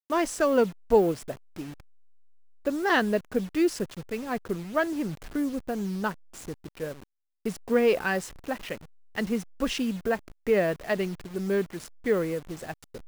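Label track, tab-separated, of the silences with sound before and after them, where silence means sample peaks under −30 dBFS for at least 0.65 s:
1.610000	2.660000	silence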